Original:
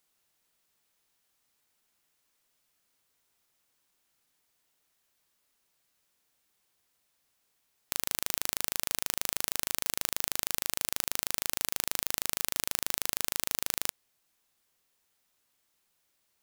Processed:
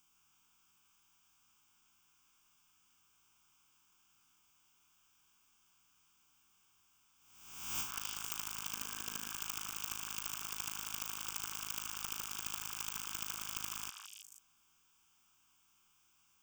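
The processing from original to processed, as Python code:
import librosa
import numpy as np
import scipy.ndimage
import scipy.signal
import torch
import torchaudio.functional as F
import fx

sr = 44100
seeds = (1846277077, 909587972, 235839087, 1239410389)

y = fx.spec_swells(x, sr, rise_s=1.03)
y = fx.fixed_phaser(y, sr, hz=2800.0, stages=8)
y = fx.small_body(y, sr, hz=(240.0, 450.0, 1600.0), ring_ms=45, db=fx.line((8.72, 8.0), (9.28, 12.0)), at=(8.72, 9.28), fade=0.02)
y = fx.over_compress(y, sr, threshold_db=-39.0, ratio=-0.5)
y = fx.echo_stepped(y, sr, ms=163, hz=1400.0, octaves=1.4, feedback_pct=70, wet_db=0.0)
y = y * librosa.db_to_amplitude(-3.5)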